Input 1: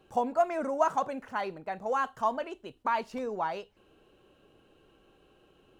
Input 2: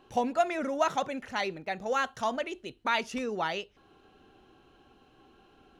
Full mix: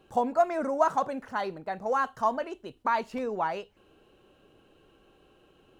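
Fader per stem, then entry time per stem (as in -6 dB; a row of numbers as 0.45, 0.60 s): +1.5, -15.5 dB; 0.00, 0.00 s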